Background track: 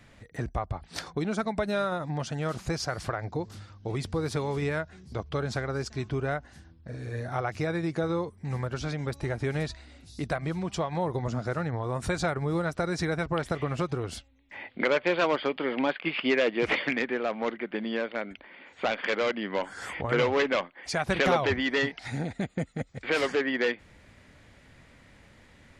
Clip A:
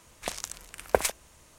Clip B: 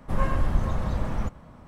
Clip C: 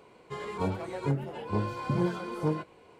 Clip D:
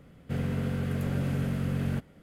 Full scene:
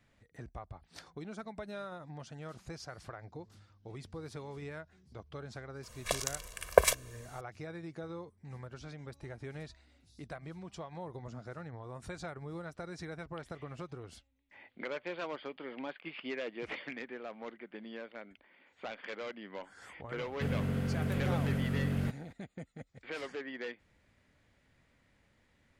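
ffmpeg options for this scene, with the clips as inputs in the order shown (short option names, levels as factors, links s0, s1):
-filter_complex "[0:a]volume=0.188[s0];[1:a]aecho=1:1:1.8:0.98,atrim=end=1.58,asetpts=PTS-STARTPTS,volume=0.75,afade=t=in:d=0.004:c=hsin,afade=t=out:st=1.576:d=0.004:c=hsin,adelay=5830[s1];[4:a]atrim=end=2.22,asetpts=PTS-STARTPTS,volume=0.708,afade=t=in:d=0.004:c=hsin,afade=t=out:st=2.216:d=0.004:c=hsin,adelay=20110[s2];[s0][s1][s2]amix=inputs=3:normalize=0"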